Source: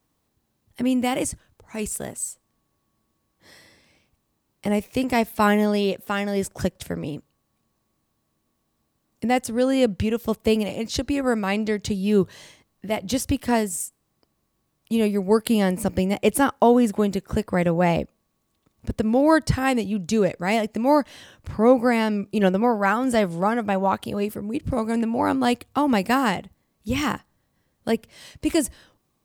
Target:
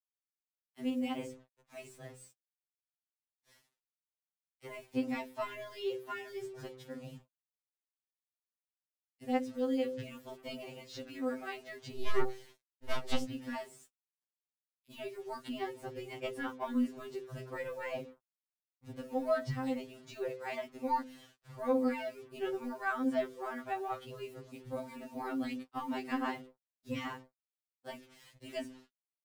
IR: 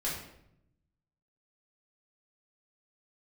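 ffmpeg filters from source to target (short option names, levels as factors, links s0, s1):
-filter_complex "[0:a]bandreject=f=64.39:t=h:w=4,bandreject=f=128.78:t=h:w=4,bandreject=f=193.17:t=h:w=4,bandreject=f=257.56:t=h:w=4,bandreject=f=321.95:t=h:w=4,bandreject=f=386.34:t=h:w=4,bandreject=f=450.73:t=h:w=4,bandreject=f=515.12:t=h:w=4,acrossover=split=230|530|5200[s0][s1][s2][s3];[s3]acompressor=threshold=0.00251:ratio=8[s4];[s0][s1][s2][s4]amix=inputs=4:normalize=0,asoftclip=type=tanh:threshold=0.422,flanger=delay=7.5:depth=9.3:regen=-69:speed=0.19:shape=triangular,asettb=1/sr,asplit=3[s5][s6][s7];[s5]atrim=end=11.954[s8];[s6]atrim=start=11.95:end=13.25,asetpts=PTS-STARTPTS,afade=t=in:d=0.004:c=qsin,afade=t=out:st=1.296:d=0.004:c=qsin,aeval=exprs='0.158*(cos(1*acos(clip(val(0)/0.158,-1,1)))-cos(1*PI/2))+0.0794*(cos(6*acos(clip(val(0)/0.158,-1,1)))-cos(6*PI/2))':c=same[s9];[s7]atrim=start=13.246[s10];[s8][s9]acrossfade=d=0.004:c1=hsin:c2=qsin[s11];[s11][s10]acrossfade=d=0.004:c1=qsin:c2=hsin,acrusher=bits=7:mix=0:aa=0.5,aphaser=in_gain=1:out_gain=1:delay=2.2:decay=0.25:speed=1.6:type=sinusoidal,afftfilt=real='re*2.45*eq(mod(b,6),0)':imag='im*2.45*eq(mod(b,6),0)':win_size=2048:overlap=0.75,volume=0.376"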